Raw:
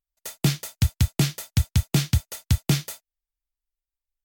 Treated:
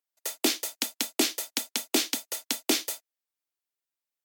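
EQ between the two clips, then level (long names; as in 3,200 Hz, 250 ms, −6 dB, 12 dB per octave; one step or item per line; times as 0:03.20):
Butterworth high-pass 250 Hz 72 dB per octave
dynamic equaliser 1,400 Hz, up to −5 dB, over −47 dBFS, Q 1.2
+3.0 dB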